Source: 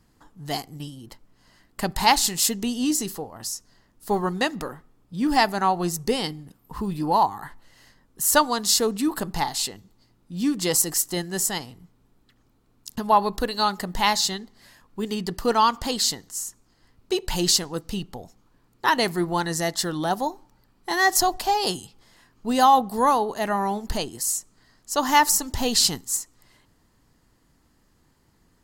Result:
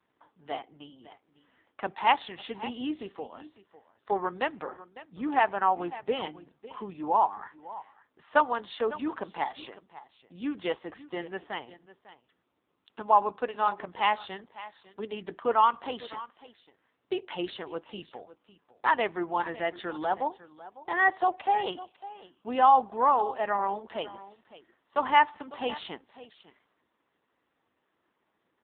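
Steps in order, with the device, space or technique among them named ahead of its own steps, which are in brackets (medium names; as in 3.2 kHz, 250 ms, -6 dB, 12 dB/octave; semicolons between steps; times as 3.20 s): satellite phone (band-pass 400–3300 Hz; delay 552 ms -17 dB; trim -2 dB; AMR-NB 5.9 kbps 8 kHz)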